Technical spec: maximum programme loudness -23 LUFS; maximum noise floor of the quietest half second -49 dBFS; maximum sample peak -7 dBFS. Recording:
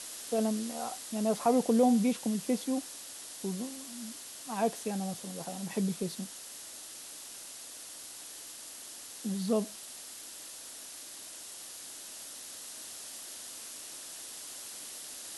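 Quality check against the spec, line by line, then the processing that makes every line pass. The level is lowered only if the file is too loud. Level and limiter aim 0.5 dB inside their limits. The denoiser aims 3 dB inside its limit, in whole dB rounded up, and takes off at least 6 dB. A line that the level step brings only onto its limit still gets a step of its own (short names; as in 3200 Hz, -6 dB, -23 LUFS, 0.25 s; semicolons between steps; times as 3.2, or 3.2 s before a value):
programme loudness -35.5 LUFS: OK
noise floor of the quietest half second -46 dBFS: fail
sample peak -15.0 dBFS: OK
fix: denoiser 6 dB, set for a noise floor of -46 dBFS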